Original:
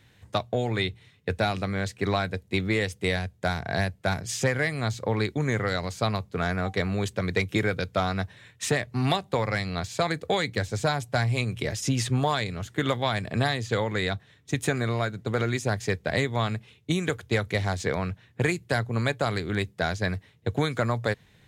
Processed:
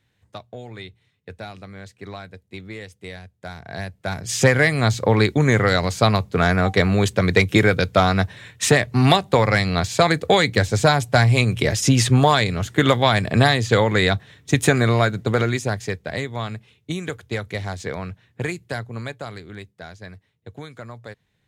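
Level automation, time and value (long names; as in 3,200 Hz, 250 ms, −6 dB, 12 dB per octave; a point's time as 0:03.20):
0:03.35 −10 dB
0:04.13 0 dB
0:04.43 +9.5 dB
0:15.15 +9.5 dB
0:16.07 −1.5 dB
0:18.62 −1.5 dB
0:19.79 −11.5 dB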